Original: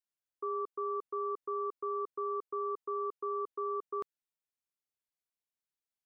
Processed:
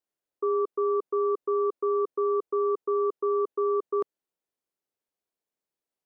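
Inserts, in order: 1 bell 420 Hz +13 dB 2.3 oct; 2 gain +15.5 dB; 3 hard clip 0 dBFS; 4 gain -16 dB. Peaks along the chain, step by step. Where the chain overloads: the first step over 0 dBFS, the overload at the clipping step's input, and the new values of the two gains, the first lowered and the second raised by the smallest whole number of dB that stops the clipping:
-19.0, -3.5, -3.5, -19.5 dBFS; no overload

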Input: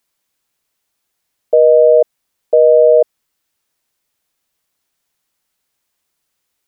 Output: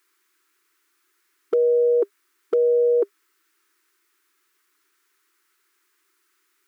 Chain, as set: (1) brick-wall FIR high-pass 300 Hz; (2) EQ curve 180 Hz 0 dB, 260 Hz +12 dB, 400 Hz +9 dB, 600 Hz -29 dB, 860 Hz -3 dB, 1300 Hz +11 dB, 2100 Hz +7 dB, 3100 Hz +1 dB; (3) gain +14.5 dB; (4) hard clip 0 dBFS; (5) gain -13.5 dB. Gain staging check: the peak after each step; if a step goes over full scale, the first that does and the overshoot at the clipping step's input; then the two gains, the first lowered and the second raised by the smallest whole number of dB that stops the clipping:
-1.5, -11.0, +3.5, 0.0, -13.5 dBFS; step 3, 3.5 dB; step 3 +10.5 dB, step 5 -9.5 dB

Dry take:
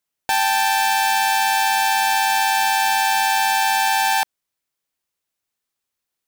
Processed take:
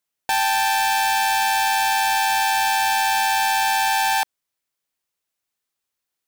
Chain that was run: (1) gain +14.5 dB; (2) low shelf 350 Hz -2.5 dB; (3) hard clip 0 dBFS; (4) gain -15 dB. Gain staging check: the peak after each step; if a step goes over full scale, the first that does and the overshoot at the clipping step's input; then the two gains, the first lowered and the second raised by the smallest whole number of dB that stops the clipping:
+4.0, +5.0, 0.0, -15.0 dBFS; step 1, 5.0 dB; step 1 +9.5 dB, step 4 -10 dB

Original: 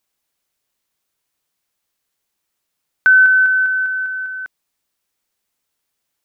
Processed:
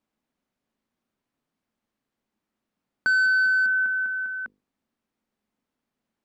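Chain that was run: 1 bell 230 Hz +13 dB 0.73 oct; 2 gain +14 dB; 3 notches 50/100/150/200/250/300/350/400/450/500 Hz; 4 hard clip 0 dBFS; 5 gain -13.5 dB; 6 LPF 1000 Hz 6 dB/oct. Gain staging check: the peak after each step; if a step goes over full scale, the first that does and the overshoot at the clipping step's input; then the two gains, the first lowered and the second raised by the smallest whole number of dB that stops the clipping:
-4.5, +9.5, +9.0, 0.0, -13.5, -15.0 dBFS; step 2, 9.0 dB; step 2 +5 dB, step 5 -4.5 dB

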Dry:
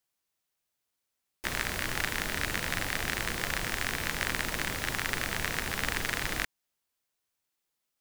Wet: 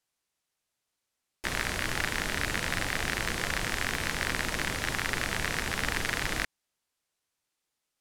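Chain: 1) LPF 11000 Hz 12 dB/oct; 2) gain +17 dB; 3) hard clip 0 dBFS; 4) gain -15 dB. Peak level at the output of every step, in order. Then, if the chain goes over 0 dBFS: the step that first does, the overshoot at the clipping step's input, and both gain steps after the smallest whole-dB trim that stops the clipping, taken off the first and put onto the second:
-10.0, +7.0, 0.0, -15.0 dBFS; step 2, 7.0 dB; step 2 +10 dB, step 4 -8 dB

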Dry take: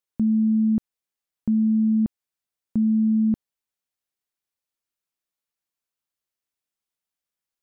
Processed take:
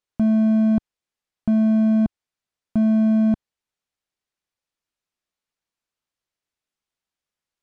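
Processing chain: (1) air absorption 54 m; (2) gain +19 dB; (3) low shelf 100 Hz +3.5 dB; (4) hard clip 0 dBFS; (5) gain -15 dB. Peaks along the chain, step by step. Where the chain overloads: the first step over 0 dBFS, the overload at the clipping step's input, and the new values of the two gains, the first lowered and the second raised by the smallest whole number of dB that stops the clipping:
-16.5, +2.5, +4.0, 0.0, -15.0 dBFS; step 2, 4.0 dB; step 2 +15 dB, step 5 -11 dB

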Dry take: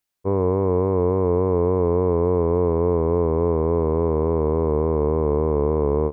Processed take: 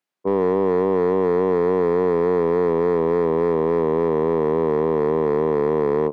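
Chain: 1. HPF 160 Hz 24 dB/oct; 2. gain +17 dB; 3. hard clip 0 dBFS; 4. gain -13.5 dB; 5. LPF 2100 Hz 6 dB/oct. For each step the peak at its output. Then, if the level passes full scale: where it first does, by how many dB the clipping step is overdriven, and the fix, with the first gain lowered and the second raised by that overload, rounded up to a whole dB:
-12.0, +5.0, 0.0, -13.5, -13.5 dBFS; step 2, 5.0 dB; step 2 +12 dB, step 4 -8.5 dB

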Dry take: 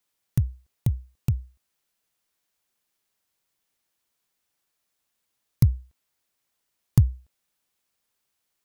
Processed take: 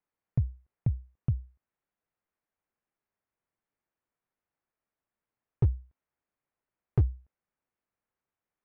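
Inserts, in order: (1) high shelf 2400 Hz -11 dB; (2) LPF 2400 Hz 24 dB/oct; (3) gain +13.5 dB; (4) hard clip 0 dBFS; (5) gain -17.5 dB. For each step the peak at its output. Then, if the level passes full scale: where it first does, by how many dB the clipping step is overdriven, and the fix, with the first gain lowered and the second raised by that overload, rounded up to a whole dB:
-5.5, -6.0, +7.5, 0.0, -17.5 dBFS; step 3, 7.5 dB; step 3 +5.5 dB, step 5 -9.5 dB

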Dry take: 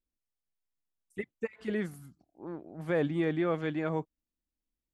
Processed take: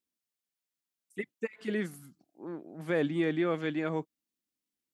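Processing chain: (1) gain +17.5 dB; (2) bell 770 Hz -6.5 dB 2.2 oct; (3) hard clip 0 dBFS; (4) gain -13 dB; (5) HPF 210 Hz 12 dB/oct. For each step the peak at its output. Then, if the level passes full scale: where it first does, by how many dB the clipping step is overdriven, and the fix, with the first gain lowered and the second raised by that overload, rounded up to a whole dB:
-0.5, -4.5, -4.5, -17.5, -18.5 dBFS; no overload

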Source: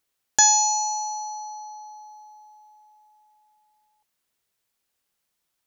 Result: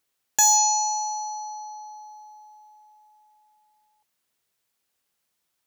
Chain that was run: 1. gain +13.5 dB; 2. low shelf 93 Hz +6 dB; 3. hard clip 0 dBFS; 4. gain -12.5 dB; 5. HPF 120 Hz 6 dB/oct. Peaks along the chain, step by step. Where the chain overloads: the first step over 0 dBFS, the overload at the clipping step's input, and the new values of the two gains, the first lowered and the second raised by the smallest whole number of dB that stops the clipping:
+9.0, +9.0, 0.0, -12.5, -11.5 dBFS; step 1, 9.0 dB; step 1 +4.5 dB, step 4 -3.5 dB

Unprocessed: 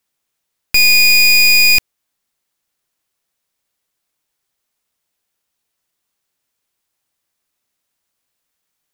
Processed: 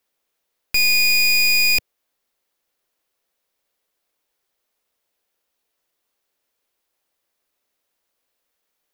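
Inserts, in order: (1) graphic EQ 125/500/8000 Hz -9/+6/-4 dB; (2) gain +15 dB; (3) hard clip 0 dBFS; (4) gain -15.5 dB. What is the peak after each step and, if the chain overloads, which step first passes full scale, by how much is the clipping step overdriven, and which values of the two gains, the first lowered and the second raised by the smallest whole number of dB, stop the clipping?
-6.0, +9.0, 0.0, -15.5 dBFS; step 2, 9.0 dB; step 2 +6 dB, step 4 -6.5 dB

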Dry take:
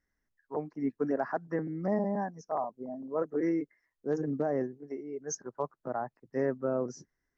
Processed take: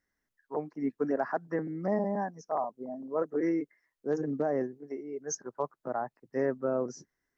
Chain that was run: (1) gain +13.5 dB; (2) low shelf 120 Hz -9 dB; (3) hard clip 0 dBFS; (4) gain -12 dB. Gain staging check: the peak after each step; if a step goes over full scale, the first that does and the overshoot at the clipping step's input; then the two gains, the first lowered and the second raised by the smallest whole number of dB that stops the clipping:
-5.5, -5.5, -5.5, -17.5 dBFS; no overload

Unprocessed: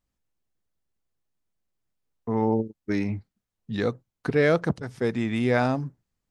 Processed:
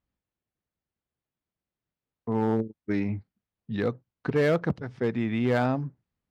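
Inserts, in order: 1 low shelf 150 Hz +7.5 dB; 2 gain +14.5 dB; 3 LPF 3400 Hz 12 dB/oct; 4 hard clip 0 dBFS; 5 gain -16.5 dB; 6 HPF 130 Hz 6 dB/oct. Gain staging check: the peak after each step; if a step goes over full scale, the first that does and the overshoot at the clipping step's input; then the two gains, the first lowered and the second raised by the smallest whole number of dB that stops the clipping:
-9.0, +5.5, +5.5, 0.0, -16.5, -13.0 dBFS; step 2, 5.5 dB; step 2 +8.5 dB, step 5 -10.5 dB

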